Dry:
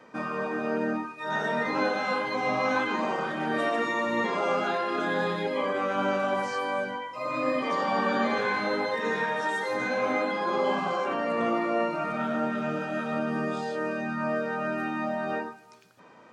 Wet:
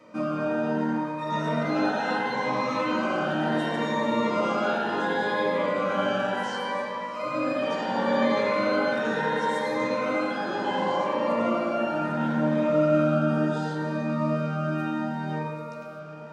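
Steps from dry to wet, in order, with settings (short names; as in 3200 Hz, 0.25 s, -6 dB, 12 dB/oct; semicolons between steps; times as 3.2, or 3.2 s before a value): 6.43–7.23 HPF 560 Hz; diffused feedback echo 0.674 s, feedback 46%, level -14.5 dB; reverb RT60 4.3 s, pre-delay 3 ms, DRR -5.5 dB; cascading phaser rising 0.7 Hz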